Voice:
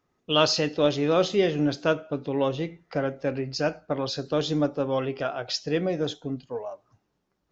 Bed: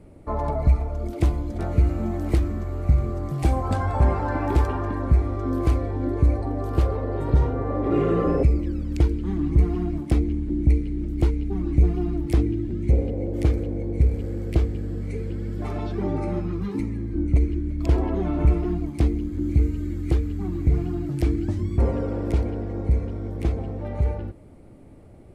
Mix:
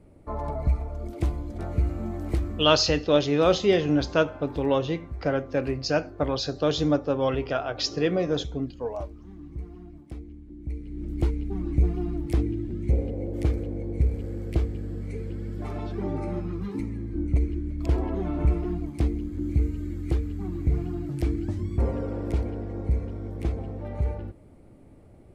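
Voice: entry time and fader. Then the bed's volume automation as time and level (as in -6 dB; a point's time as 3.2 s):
2.30 s, +1.5 dB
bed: 2.55 s -5.5 dB
3.06 s -18.5 dB
10.59 s -18.5 dB
11.1 s -4 dB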